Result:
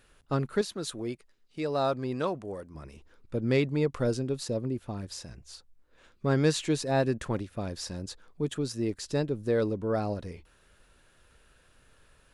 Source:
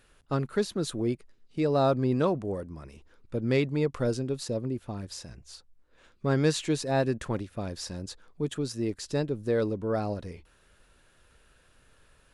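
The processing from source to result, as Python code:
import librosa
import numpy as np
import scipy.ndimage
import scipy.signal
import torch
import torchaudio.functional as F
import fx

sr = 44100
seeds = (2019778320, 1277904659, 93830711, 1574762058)

y = fx.low_shelf(x, sr, hz=480.0, db=-9.0, at=(0.61, 2.75))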